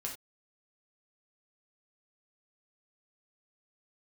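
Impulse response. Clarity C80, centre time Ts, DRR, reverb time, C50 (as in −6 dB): 13.0 dB, 21 ms, −1.5 dB, non-exponential decay, 7.5 dB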